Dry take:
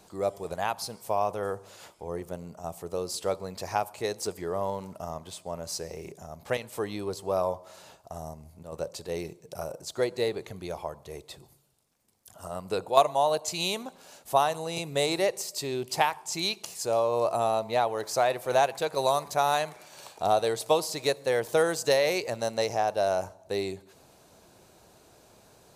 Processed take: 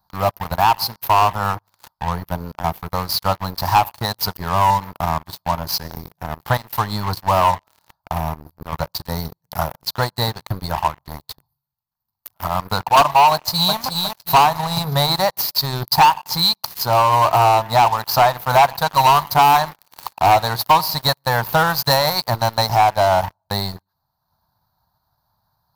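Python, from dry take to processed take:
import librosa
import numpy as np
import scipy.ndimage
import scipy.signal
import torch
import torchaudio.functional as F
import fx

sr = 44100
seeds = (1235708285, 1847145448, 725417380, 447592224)

y = fx.echo_throw(x, sr, start_s=13.32, length_s=0.45, ms=360, feedback_pct=40, wet_db=-4.5)
y = fx.curve_eq(y, sr, hz=(110.0, 160.0, 410.0, 920.0, 1800.0, 2600.0, 4400.0, 8000.0, 14000.0), db=(0, -3, -29, 3, -9, -28, -1, -29, 7))
y = fx.leveller(y, sr, passes=5)
y = fx.transient(y, sr, attack_db=1, sustain_db=-6)
y = F.gain(torch.from_numpy(y), 3.0).numpy()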